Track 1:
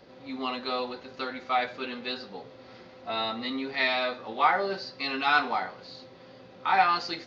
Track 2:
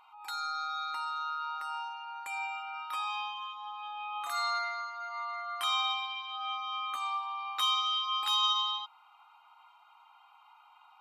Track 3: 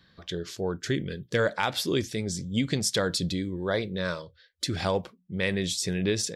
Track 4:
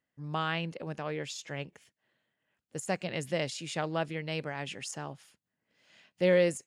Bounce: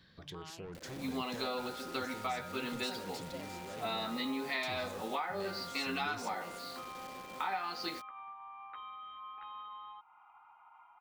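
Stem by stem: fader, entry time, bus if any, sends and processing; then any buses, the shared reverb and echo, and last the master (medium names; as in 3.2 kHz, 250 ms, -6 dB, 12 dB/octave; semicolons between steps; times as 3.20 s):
-2.0 dB, 0.75 s, bus B, no send, resonant low shelf 150 Hz -6.5 dB, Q 1.5; upward compressor, threshold -53 dBFS; word length cut 8-bit, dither none
+0.5 dB, 1.15 s, bus A, no send, short-mantissa float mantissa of 2-bit; inverse Chebyshev low-pass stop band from 5.2 kHz, stop band 50 dB
-2.5 dB, 0.00 s, bus A, no send, saturation -31 dBFS, distortion -7 dB
-15.5 dB, 0.00 s, bus B, no send, stepped phaser 12 Hz 350–1600 Hz
bus A: 0.0 dB, compression 3:1, threshold -48 dBFS, peak gain reduction 14.5 dB
bus B: 0.0 dB, compression 8:1, threshold -33 dBFS, peak gain reduction 14.5 dB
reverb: none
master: peaking EQ 1.2 kHz -3 dB 0.2 oct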